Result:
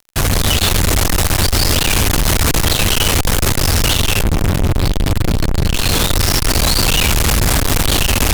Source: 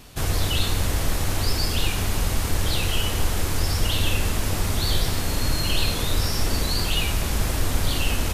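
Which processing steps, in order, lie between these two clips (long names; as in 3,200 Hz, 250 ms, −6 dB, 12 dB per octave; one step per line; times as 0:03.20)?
0:04.23–0:05.74: bass and treble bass +12 dB, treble −9 dB
automatic gain control gain up to 12.5 dB
fuzz pedal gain 40 dB, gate −36 dBFS
level +1.5 dB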